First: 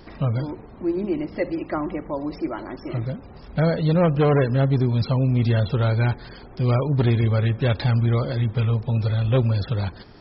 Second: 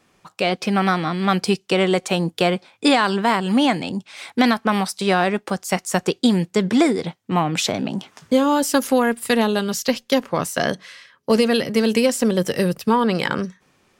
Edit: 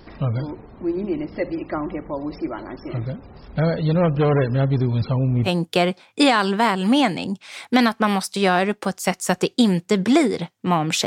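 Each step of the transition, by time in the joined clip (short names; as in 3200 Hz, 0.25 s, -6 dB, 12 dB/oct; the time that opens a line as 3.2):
first
5–5.49 LPF 3900 Hz -> 1400 Hz
5.46 switch to second from 2.11 s, crossfade 0.06 s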